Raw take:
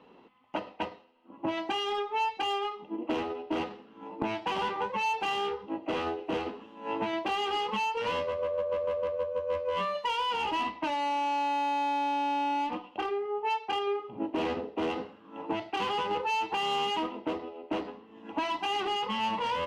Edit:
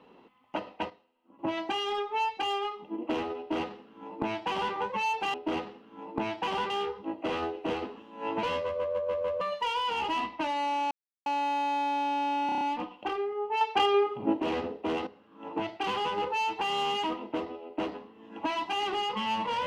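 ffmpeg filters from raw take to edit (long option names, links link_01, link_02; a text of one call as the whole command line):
ffmpeg -i in.wav -filter_complex "[0:a]asplit=16[link_01][link_02][link_03][link_04][link_05][link_06][link_07][link_08][link_09][link_10][link_11][link_12][link_13][link_14][link_15][link_16];[link_01]atrim=end=0.902[link_17];[link_02]atrim=start=0.898:end=1.392,asetpts=PTS-STARTPTS,volume=-8dB[link_18];[link_03]atrim=start=1.388:end=5.342[link_19];[link_04]atrim=start=3.378:end=4.742[link_20];[link_05]atrim=start=5.338:end=7.072[link_21];[link_06]atrim=start=8.058:end=9.042[link_22];[link_07]atrim=start=9.838:end=11.34,asetpts=PTS-STARTPTS,afade=type=out:start_time=1.498:duration=0.004:curve=hsin,apad=pad_dur=0.35[link_23];[link_08]atrim=start=11.34:end=12.572,asetpts=PTS-STARTPTS,afade=type=in:duration=0.004:curve=hsin[link_24];[link_09]atrim=start=12.538:end=12.572[link_25];[link_10]atrim=start=12.538:end=12.572[link_26];[link_11]atrim=start=12.538:end=12.572[link_27];[link_12]atrim=start=12.538:end=12.572[link_28];[link_13]atrim=start=12.538:end=13.542[link_29];[link_14]atrim=start=13.538:end=14.332,asetpts=PTS-STARTPTS,volume=6.5dB[link_30];[link_15]atrim=start=14.328:end=15,asetpts=PTS-STARTPTS,afade=type=out:start_time=0.668:duration=0.004:curve=hsin:silence=0.211349[link_31];[link_16]atrim=start=15,asetpts=PTS-STARTPTS,afade=type=in:duration=0.42:silence=0.211349[link_32];[link_17][link_18]acrossfade=duration=0.004:curve1=hsin:curve2=hsin[link_33];[link_33][link_19]acrossfade=duration=0.004:curve1=hsin:curve2=hsin[link_34];[link_34][link_20]acrossfade=duration=0.004:curve1=hsin:curve2=hsin[link_35];[link_35][link_21]acrossfade=duration=0.004:curve1=hsin:curve2=hsin[link_36];[link_36][link_22]acrossfade=duration=0.004:curve1=hsin:curve2=hsin[link_37];[link_23][link_24]concat=n=2:v=0:a=1[link_38];[link_37][link_38]acrossfade=duration=0.004:curve1=hsin:curve2=hsin[link_39];[link_39][link_25]acrossfade=duration=0.004:curve1=hsin:curve2=hsin[link_40];[link_40][link_26]acrossfade=duration=0.004:curve1=hsin:curve2=hsin[link_41];[link_41][link_27]acrossfade=duration=0.004:curve1=hsin:curve2=hsin[link_42];[link_42][link_28]acrossfade=duration=0.004:curve1=hsin:curve2=hsin[link_43];[link_43][link_29]acrossfade=duration=0.004:curve1=hsin:curve2=hsin[link_44];[link_44][link_30]acrossfade=duration=0.004:curve1=hsin:curve2=hsin[link_45];[link_31][link_32]concat=n=2:v=0:a=1[link_46];[link_45][link_46]acrossfade=duration=0.004:curve1=hsin:curve2=hsin" out.wav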